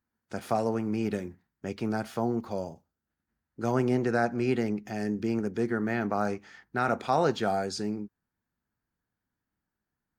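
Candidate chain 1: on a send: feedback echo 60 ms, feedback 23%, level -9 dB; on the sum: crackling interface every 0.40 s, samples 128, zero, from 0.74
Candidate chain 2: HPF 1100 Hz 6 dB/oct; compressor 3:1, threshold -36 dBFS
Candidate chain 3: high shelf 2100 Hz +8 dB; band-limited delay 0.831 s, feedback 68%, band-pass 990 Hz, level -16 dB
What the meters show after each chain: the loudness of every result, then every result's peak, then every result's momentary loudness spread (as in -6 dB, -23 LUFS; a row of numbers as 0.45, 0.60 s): -29.5, -41.5, -29.0 LUFS; -13.5, -22.0, -12.0 dBFS; 12, 9, 20 LU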